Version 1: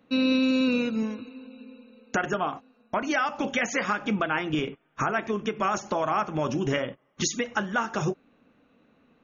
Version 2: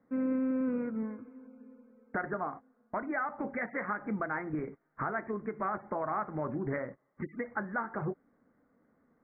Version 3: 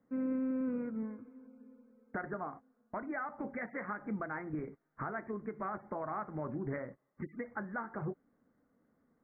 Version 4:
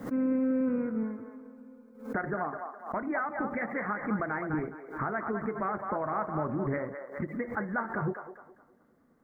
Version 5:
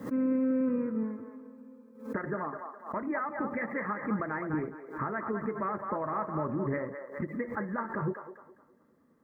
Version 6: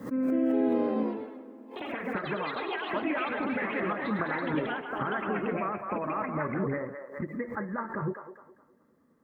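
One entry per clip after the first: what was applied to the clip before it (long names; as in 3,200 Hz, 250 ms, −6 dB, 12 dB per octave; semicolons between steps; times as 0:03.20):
Butterworth low-pass 2,100 Hz 96 dB per octave; level −7.5 dB
low-shelf EQ 340 Hz +4 dB; level −6 dB
delay with a band-pass on its return 208 ms, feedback 32%, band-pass 960 Hz, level −5.5 dB; background raised ahead of every attack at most 120 dB per second; level +6.5 dB
notch comb filter 740 Hz
delay with pitch and tempo change per echo 229 ms, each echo +4 semitones, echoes 3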